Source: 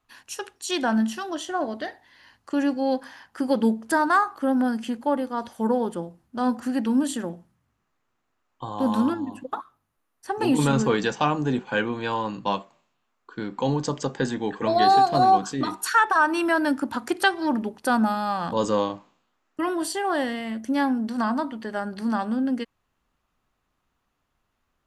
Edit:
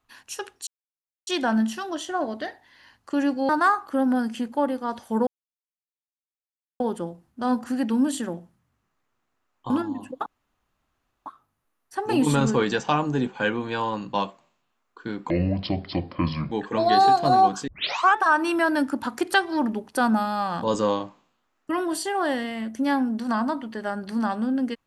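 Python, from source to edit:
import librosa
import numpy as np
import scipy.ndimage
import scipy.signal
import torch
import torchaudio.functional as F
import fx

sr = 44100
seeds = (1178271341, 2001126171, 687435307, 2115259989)

y = fx.edit(x, sr, fx.insert_silence(at_s=0.67, length_s=0.6),
    fx.cut(start_s=2.89, length_s=1.09),
    fx.insert_silence(at_s=5.76, length_s=1.53),
    fx.cut(start_s=8.66, length_s=0.36),
    fx.insert_room_tone(at_s=9.58, length_s=1.0),
    fx.speed_span(start_s=13.62, length_s=0.79, speed=0.65),
    fx.tape_start(start_s=15.57, length_s=0.48), tone=tone)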